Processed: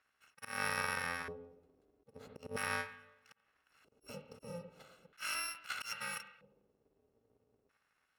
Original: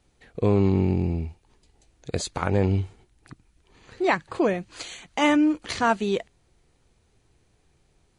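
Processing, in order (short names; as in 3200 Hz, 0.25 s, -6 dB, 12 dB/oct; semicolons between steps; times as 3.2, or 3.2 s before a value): FFT order left unsorted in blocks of 128 samples; on a send at -10 dB: reverb RT60 0.90 s, pre-delay 45 ms; on the sum: auto swell 0.183 s; LFO band-pass square 0.39 Hz 420–1600 Hz; gain +4 dB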